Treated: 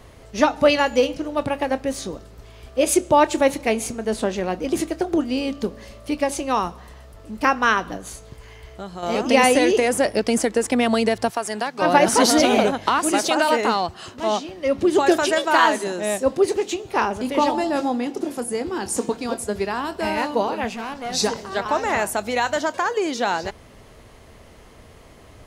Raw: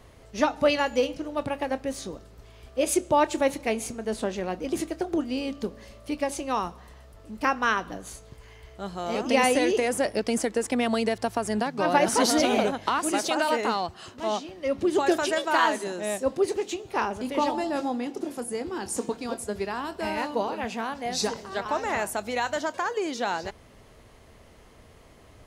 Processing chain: 7.96–9.03 compressor 3:1, threshold -37 dBFS, peak gain reduction 7.5 dB; 11.3–11.82 HPF 740 Hz 6 dB/oct; 20.69–21.14 tube stage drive 29 dB, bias 0.55; gain +6 dB

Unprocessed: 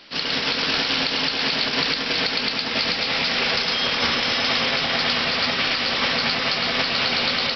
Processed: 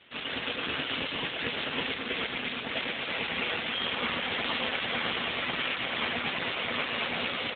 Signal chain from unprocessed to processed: 1.7–2.91 bell 63 Hz -> 170 Hz -2 dB 0.36 oct; feedback echo 0.918 s, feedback 16%, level -10 dB; gain -4.5 dB; AMR-NB 7.4 kbps 8000 Hz

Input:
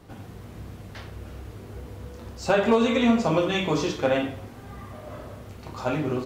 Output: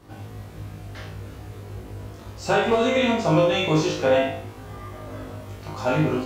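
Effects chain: flutter echo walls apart 3.3 m, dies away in 0.47 s; vocal rider 2 s

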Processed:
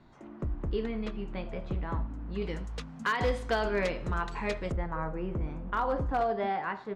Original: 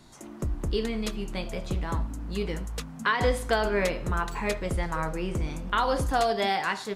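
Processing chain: LPF 2200 Hz 12 dB/oct, from 2.42 s 4900 Hz, from 4.72 s 1500 Hz; hard clip -17 dBFS, distortion -25 dB; gain -3.5 dB

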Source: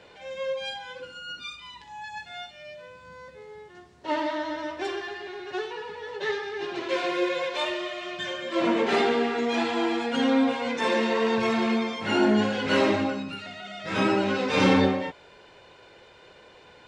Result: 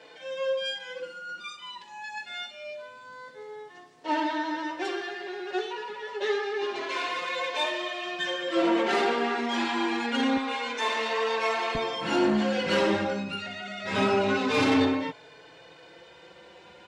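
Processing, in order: soft clip -19.5 dBFS, distortion -14 dB; HPF 250 Hz 12 dB/oct, from 10.37 s 550 Hz, from 11.75 s 95 Hz; endless flanger 4.1 ms +0.26 Hz; gain +4.5 dB

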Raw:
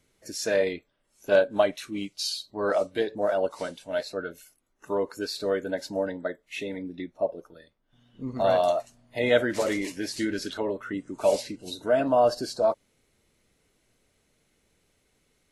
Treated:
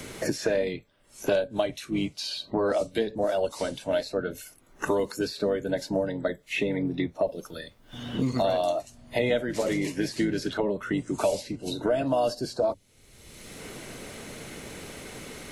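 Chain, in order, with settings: octaver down 1 oct, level -6 dB; dynamic EQ 1400 Hz, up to -5 dB, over -41 dBFS, Q 1.2; three-band squash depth 100%

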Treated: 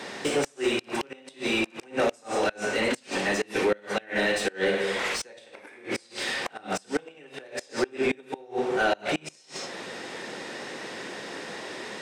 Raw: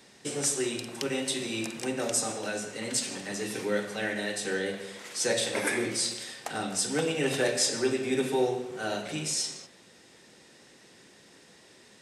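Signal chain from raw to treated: flutter echo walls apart 9.9 m, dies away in 0.28 s; compressor 2:1, threshold -44 dBFS, peak gain reduction 12.5 dB; dynamic EQ 2600 Hz, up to +4 dB, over -56 dBFS, Q 2.6; flipped gate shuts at -28 dBFS, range -30 dB; overdrive pedal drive 27 dB, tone 1200 Hz, clips at -14 dBFS; gain +4.5 dB

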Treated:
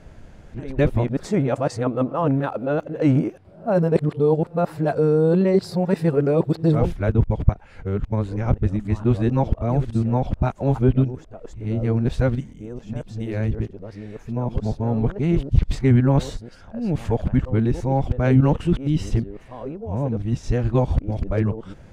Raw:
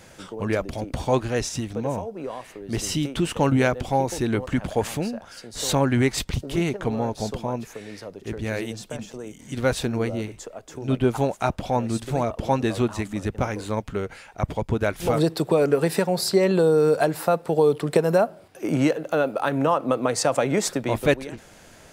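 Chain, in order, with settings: whole clip reversed; RIAA curve playback; gain -3.5 dB

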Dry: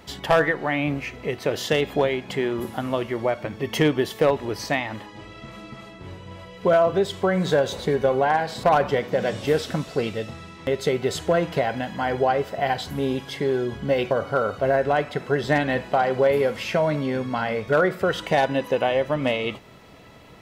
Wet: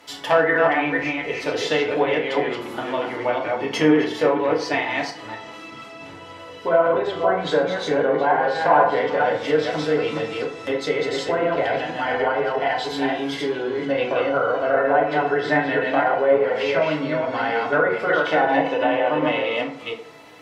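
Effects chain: reverse delay 0.243 s, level -2 dB; treble ducked by the level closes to 1700 Hz, closed at -14 dBFS; HPF 660 Hz 6 dB/oct; FDN reverb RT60 0.57 s, low-frequency decay 1×, high-frequency decay 0.55×, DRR -1.5 dB

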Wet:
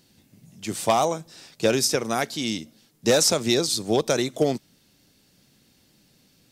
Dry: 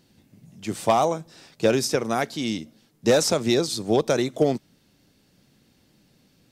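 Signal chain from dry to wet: high shelf 2800 Hz +7.5 dB; gain -1.5 dB

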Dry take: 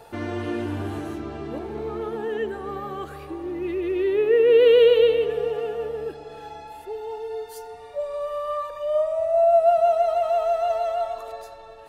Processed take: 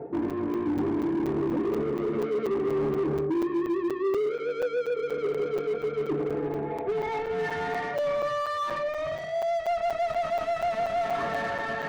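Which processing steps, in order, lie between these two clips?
low-pass sweep 350 Hz -> 1700 Hz, 6.63–7.39; reverse; compressor 5:1, threshold -33 dBFS, peak gain reduction 19 dB; reverse; bell 2000 Hz +11 dB 0.62 oct; overdrive pedal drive 26 dB, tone 1600 Hz, clips at -24 dBFS; on a send at -3 dB: reverb, pre-delay 3 ms; on the sum: hard clip -23 dBFS, distortion -16 dB; crackling interface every 0.24 s, samples 256, zero, from 0.3

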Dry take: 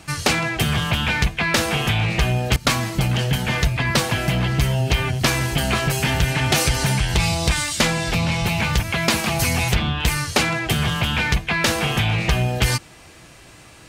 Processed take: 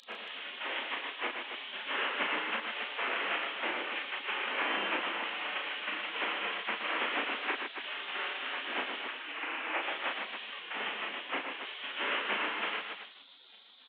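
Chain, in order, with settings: delta modulation 16 kbps, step -27.5 dBFS; air absorption 130 m; reverb RT60 1.1 s, pre-delay 82 ms, DRR 14 dB; 9.07–9.83 frequency shift -270 Hz; spectral gate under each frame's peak -25 dB weak; loudspeakers at several distances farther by 12 m -4 dB, 41 m -7 dB, 52 m -7 dB, 95 m -8 dB; 10.6–11.63 frequency shift -91 Hz; steep high-pass 200 Hz 48 dB/oct

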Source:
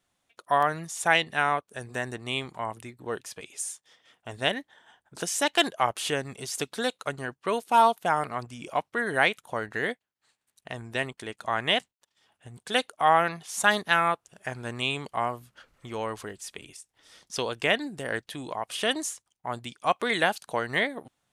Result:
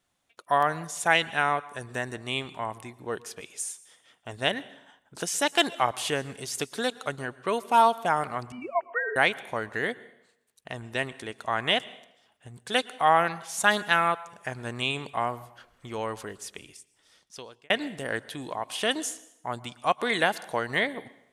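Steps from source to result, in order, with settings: 8.52–9.16 sine-wave speech; plate-style reverb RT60 0.79 s, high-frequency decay 0.9×, pre-delay 0.1 s, DRR 19 dB; 16.45–17.7 fade out

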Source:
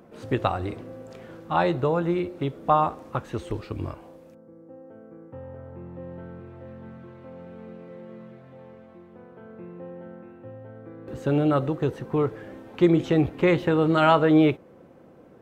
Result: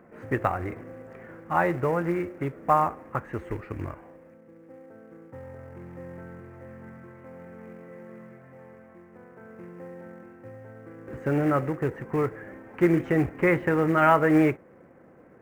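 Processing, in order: short-mantissa float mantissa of 2-bit; resonant high shelf 2700 Hz -11.5 dB, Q 3; gain -2.5 dB

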